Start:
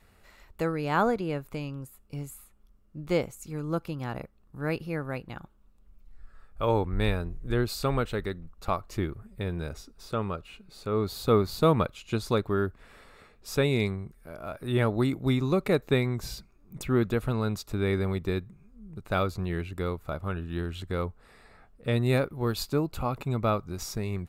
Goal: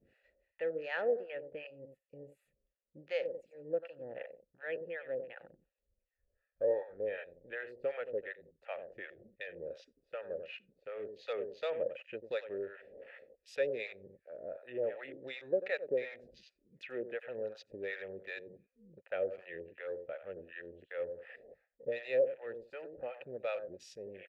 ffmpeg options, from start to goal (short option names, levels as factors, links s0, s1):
-filter_complex "[0:a]asplit=2[s0][s1];[s1]aecho=0:1:93|186|279:0.251|0.0527|0.0111[s2];[s0][s2]amix=inputs=2:normalize=0,acrossover=split=470[s3][s4];[s3]acompressor=threshold=0.0141:ratio=4[s5];[s5][s4]amix=inputs=2:normalize=0,acrossover=split=680[s6][s7];[s6]aeval=exprs='val(0)*(1-1/2+1/2*cos(2*PI*2.7*n/s))':c=same[s8];[s7]aeval=exprs='val(0)*(1-1/2-1/2*cos(2*PI*2.7*n/s))':c=same[s9];[s8][s9]amix=inputs=2:normalize=0,areverse,acompressor=mode=upward:threshold=0.0126:ratio=2.5,areverse,afwtdn=0.00398,asplit=3[s10][s11][s12];[s10]bandpass=f=530:t=q:w=8,volume=1[s13];[s11]bandpass=f=1840:t=q:w=8,volume=0.501[s14];[s12]bandpass=f=2480:t=q:w=8,volume=0.355[s15];[s13][s14][s15]amix=inputs=3:normalize=0,volume=2.82"